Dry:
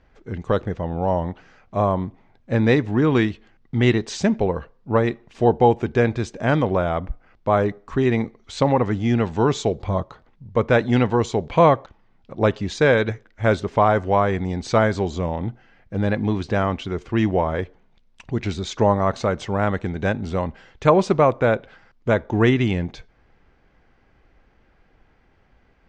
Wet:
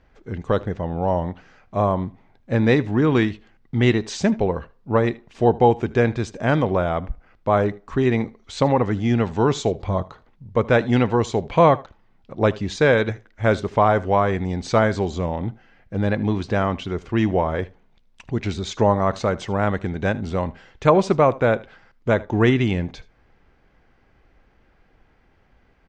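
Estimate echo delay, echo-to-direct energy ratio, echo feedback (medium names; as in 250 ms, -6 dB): 77 ms, -21.0 dB, no regular repeats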